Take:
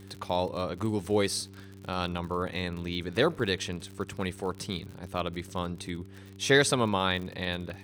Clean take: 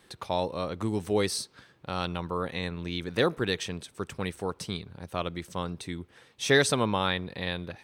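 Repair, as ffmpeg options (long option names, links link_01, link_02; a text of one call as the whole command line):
ffmpeg -i in.wav -af "adeclick=threshold=4,bandreject=frequency=97.3:width_type=h:width=4,bandreject=frequency=194.6:width_type=h:width=4,bandreject=frequency=291.9:width_type=h:width=4,bandreject=frequency=389.2:width_type=h:width=4" out.wav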